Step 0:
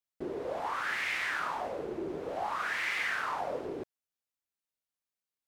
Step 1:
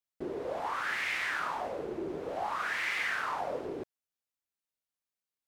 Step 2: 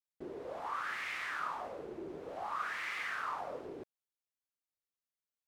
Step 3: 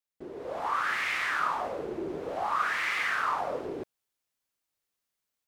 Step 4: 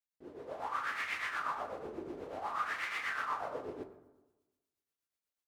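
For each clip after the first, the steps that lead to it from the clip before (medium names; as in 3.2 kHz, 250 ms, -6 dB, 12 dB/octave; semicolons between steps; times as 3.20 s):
no audible change
dynamic bell 1.2 kHz, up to +7 dB, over -50 dBFS, Q 3.9; trim -7.5 dB
level rider gain up to 8 dB; trim +1.5 dB
tremolo triangle 8.2 Hz, depth 70%; on a send at -6.5 dB: reverberation RT60 1.1 s, pre-delay 5 ms; on the sum: trim -5.5 dB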